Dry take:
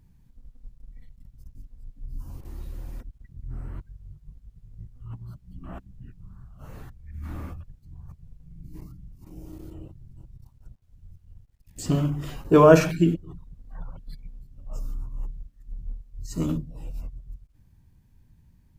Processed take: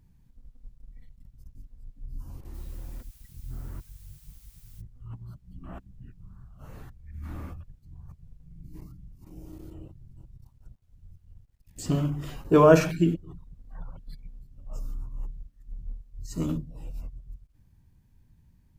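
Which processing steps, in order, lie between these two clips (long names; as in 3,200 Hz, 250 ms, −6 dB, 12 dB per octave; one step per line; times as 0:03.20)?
0:02.53–0:04.80: background noise blue −56 dBFS
level −2.5 dB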